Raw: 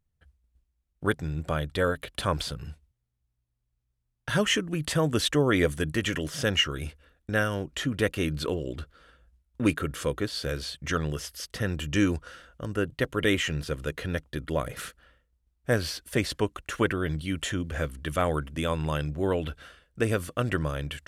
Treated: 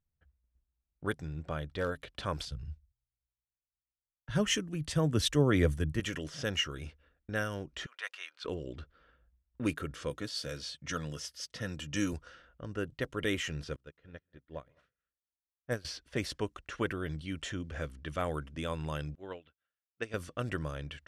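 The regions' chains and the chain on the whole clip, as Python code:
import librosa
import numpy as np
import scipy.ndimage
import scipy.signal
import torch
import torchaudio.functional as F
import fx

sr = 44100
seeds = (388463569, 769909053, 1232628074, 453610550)

y = fx.chain(x, sr, fx.high_shelf(hz=4500.0, db=-5.5),
    fx.clip_hard(threshold_db=-17.5), at=(1.25, 1.92))
y = fx.chain(y, sr, fx.low_shelf(hz=210.0, db=10.0),
    fx.band_widen(depth_pct=70), at=(2.45, 6.0))
y = fx.chain(y, sr, fx.highpass(hz=910.0, slope=24),
    fx.high_shelf(hz=11000.0, db=2.5), at=(7.86, 8.45))
y = fx.chain(y, sr, fx.highpass(hz=90.0, slope=12),
    fx.high_shelf(hz=5000.0, db=10.0),
    fx.notch_comb(f0_hz=390.0), at=(10.1, 12.13))
y = fx.chain(y, sr, fx.echo_multitap(ms=(133, 174, 210), db=(-20.0, -19.0, -14.5)),
    fx.upward_expand(threshold_db=-42.0, expansion=2.5), at=(13.76, 15.85))
y = fx.chain(y, sr, fx.lowpass(hz=4900.0, slope=12),
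    fx.tilt_eq(slope=2.5),
    fx.upward_expand(threshold_db=-47.0, expansion=2.5), at=(19.15, 20.14))
y = fx.peak_eq(y, sr, hz=5600.0, db=4.5, octaves=0.37)
y = fx.env_lowpass(y, sr, base_hz=2300.0, full_db=-22.5)
y = F.gain(torch.from_numpy(y), -8.0).numpy()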